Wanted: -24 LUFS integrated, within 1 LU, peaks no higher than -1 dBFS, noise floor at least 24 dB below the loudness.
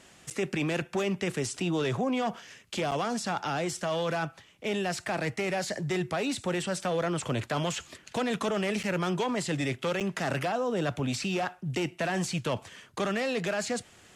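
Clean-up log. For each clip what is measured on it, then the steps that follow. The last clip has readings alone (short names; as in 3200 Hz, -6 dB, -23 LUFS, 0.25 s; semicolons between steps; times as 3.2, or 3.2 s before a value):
dropouts 4; longest dropout 7.7 ms; loudness -31.0 LUFS; peak -17.5 dBFS; loudness target -24.0 LUFS
-> interpolate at 0.3/2.91/8.83/10, 7.7 ms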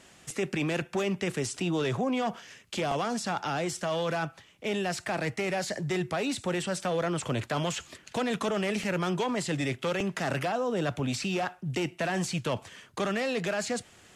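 dropouts 0; loudness -31.0 LUFS; peak -17.0 dBFS; loudness target -24.0 LUFS
-> gain +7 dB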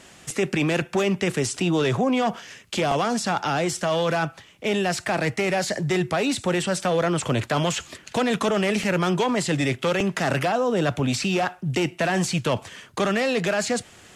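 loudness -24.0 LUFS; peak -10.0 dBFS; noise floor -50 dBFS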